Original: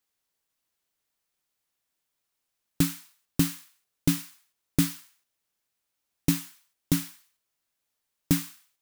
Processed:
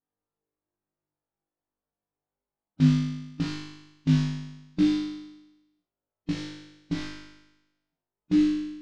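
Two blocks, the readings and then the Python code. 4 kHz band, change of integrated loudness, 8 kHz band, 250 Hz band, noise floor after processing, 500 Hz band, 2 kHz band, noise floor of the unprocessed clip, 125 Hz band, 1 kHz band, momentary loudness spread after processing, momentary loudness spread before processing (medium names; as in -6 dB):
-2.0 dB, +1.5 dB, -15.0 dB, +4.5 dB, under -85 dBFS, +2.5 dB, -0.5 dB, -82 dBFS, +3.5 dB, 0.0 dB, 18 LU, 17 LU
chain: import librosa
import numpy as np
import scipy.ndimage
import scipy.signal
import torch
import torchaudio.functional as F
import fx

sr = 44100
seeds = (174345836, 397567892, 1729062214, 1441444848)

p1 = fx.schmitt(x, sr, flips_db=-23.0)
p2 = x + (p1 * librosa.db_to_amplitude(-4.0))
p3 = fx.wow_flutter(p2, sr, seeds[0], rate_hz=2.1, depth_cents=130.0)
p4 = fx.env_lowpass(p3, sr, base_hz=740.0, full_db=-21.5)
p5 = fx.hpss(p4, sr, part='percussive', gain_db=-15)
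p6 = scipy.signal.sosfilt(scipy.signal.butter(4, 5000.0, 'lowpass', fs=sr, output='sos'), p5)
p7 = p6 + fx.room_flutter(p6, sr, wall_m=3.4, rt60_s=1.0, dry=0)
y = p7 * librosa.db_to_amplitude(2.0)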